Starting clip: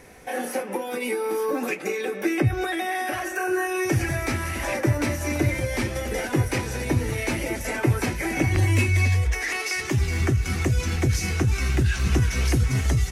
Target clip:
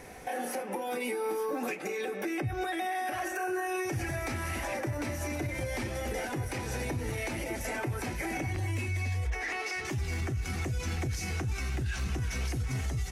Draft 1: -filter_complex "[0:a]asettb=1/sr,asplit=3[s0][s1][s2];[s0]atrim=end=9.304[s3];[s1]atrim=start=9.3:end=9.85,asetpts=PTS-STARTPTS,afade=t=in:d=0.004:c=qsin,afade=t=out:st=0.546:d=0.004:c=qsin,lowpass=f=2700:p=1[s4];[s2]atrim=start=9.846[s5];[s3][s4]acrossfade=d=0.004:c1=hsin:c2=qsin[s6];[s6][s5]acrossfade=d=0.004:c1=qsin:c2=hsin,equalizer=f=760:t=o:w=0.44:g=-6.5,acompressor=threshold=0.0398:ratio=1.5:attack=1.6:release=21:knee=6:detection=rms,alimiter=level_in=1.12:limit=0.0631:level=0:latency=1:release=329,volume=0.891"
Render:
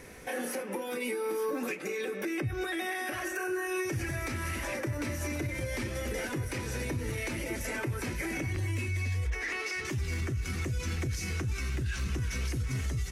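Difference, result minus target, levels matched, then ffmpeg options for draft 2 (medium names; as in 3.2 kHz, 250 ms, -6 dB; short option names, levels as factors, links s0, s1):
1 kHz band -5.5 dB
-filter_complex "[0:a]asettb=1/sr,asplit=3[s0][s1][s2];[s0]atrim=end=9.304[s3];[s1]atrim=start=9.3:end=9.85,asetpts=PTS-STARTPTS,afade=t=in:d=0.004:c=qsin,afade=t=out:st=0.546:d=0.004:c=qsin,lowpass=f=2700:p=1[s4];[s2]atrim=start=9.846[s5];[s3][s4]acrossfade=d=0.004:c1=hsin:c2=qsin[s6];[s6][s5]acrossfade=d=0.004:c1=qsin:c2=hsin,equalizer=f=760:t=o:w=0.44:g=4.5,acompressor=threshold=0.0398:ratio=1.5:attack=1.6:release=21:knee=6:detection=rms,alimiter=level_in=1.12:limit=0.0631:level=0:latency=1:release=329,volume=0.891"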